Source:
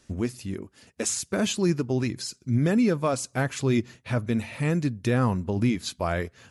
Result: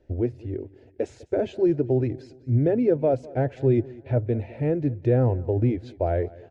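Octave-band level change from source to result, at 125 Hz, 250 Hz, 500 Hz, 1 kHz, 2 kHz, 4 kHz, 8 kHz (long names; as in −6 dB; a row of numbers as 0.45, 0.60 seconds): +2.5 dB, −0.5 dB, +5.5 dB, −2.5 dB, −10.5 dB, below −15 dB, below −25 dB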